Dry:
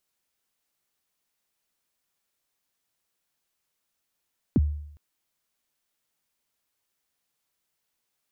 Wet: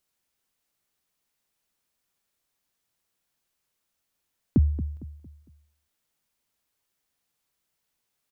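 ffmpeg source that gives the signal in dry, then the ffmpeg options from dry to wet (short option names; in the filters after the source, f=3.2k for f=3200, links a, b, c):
-f lavfi -i "aevalsrc='0.188*pow(10,-3*t/0.72)*sin(2*PI*(340*0.033/log(74/340)*(exp(log(74/340)*min(t,0.033)/0.033)-1)+74*max(t-0.033,0)))':d=0.41:s=44100"
-filter_complex "[0:a]lowshelf=f=230:g=4,asplit=2[a][b];[b]adelay=228,lowpass=f=2k:p=1,volume=-13.5dB,asplit=2[c][d];[d]adelay=228,lowpass=f=2k:p=1,volume=0.39,asplit=2[e][f];[f]adelay=228,lowpass=f=2k:p=1,volume=0.39,asplit=2[g][h];[h]adelay=228,lowpass=f=2k:p=1,volume=0.39[i];[a][c][e][g][i]amix=inputs=5:normalize=0"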